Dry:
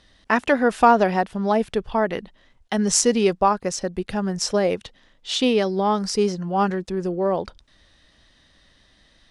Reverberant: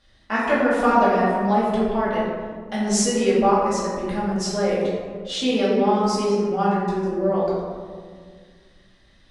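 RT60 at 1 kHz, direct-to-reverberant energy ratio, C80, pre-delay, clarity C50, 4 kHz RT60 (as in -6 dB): 1.7 s, -10.0 dB, 1.0 dB, 3 ms, -1.0 dB, 0.85 s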